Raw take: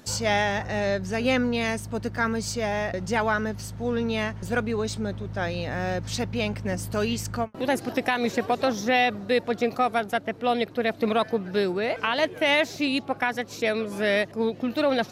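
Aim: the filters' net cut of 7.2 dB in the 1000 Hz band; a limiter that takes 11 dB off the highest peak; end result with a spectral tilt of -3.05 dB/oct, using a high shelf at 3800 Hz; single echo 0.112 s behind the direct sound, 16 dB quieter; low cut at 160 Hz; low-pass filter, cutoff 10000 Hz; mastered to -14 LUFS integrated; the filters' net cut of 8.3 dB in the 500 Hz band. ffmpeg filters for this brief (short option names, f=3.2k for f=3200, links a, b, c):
-af "highpass=160,lowpass=10k,equalizer=f=500:t=o:g=-8,equalizer=f=1k:t=o:g=-7.5,highshelf=f=3.8k:g=8.5,alimiter=limit=-21.5dB:level=0:latency=1,aecho=1:1:112:0.158,volume=18dB"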